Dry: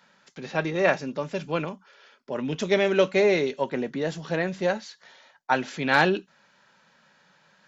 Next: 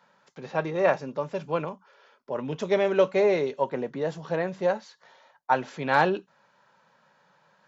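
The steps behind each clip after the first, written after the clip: graphic EQ 125/500/1000 Hz +7/+7/+9 dB; gain -8 dB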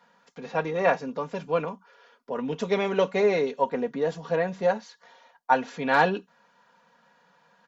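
comb 4.2 ms, depth 62%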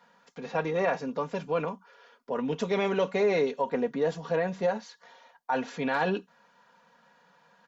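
limiter -17.5 dBFS, peak gain reduction 10 dB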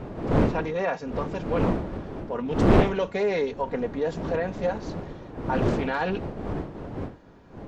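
wind noise 390 Hz -28 dBFS; Doppler distortion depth 0.78 ms

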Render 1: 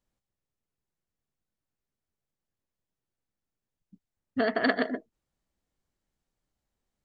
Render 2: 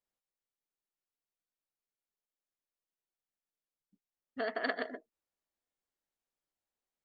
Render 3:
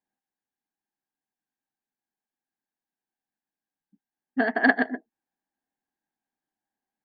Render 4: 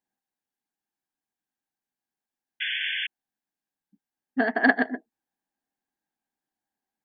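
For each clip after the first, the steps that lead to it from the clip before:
tone controls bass -15 dB, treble -1 dB; gain -7.5 dB
small resonant body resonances 240/790/1600 Hz, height 18 dB, ringing for 20 ms; upward expander 1.5:1, over -36 dBFS; gain +3 dB
painted sound noise, 2.6–3.07, 1500–3500 Hz -29 dBFS

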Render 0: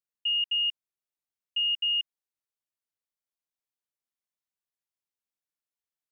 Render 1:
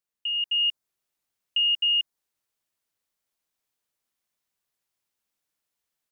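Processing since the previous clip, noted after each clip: dynamic EQ 2700 Hz, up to -6 dB, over -41 dBFS, Q 1.5; AGC gain up to 6.5 dB; gain +3.5 dB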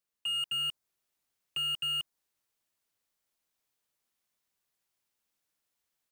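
slew limiter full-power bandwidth 82 Hz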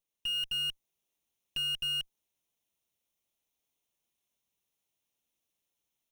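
minimum comb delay 0.32 ms

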